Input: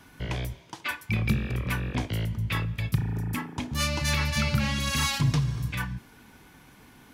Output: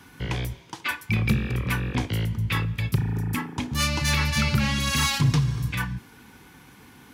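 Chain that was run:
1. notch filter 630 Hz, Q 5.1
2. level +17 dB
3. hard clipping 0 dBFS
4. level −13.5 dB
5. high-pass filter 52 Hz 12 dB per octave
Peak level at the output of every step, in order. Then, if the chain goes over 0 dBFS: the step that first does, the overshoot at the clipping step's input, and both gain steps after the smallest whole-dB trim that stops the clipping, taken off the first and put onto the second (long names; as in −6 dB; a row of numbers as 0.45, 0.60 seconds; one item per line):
−13.0, +4.0, 0.0, −13.5, −10.0 dBFS
step 2, 4.0 dB
step 2 +13 dB, step 4 −9.5 dB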